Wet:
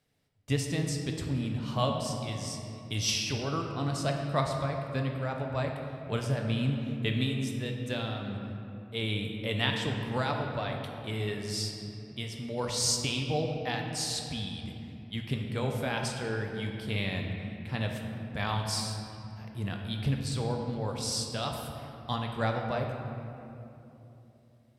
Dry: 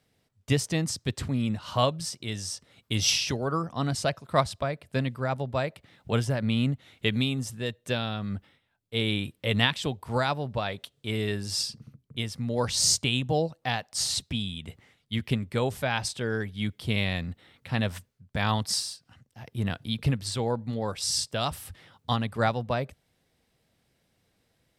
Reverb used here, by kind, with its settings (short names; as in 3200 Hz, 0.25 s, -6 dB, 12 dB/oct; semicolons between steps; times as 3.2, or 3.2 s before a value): shoebox room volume 130 m³, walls hard, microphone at 0.34 m; gain -6 dB